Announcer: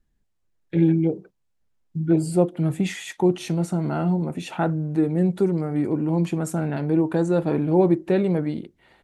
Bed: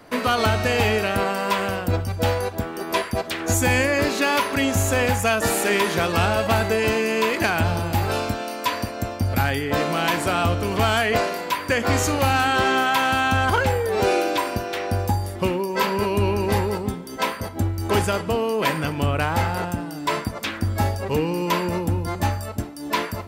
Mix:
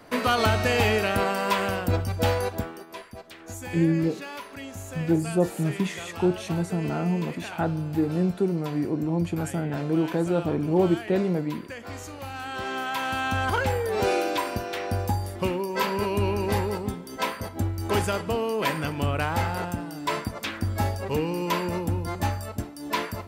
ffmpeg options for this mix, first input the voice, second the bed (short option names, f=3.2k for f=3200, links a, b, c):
-filter_complex "[0:a]adelay=3000,volume=-3.5dB[a];[1:a]volume=11.5dB,afade=t=out:st=2.54:d=0.32:silence=0.16788,afade=t=in:st=12.32:d=1.45:silence=0.211349[b];[a][b]amix=inputs=2:normalize=0"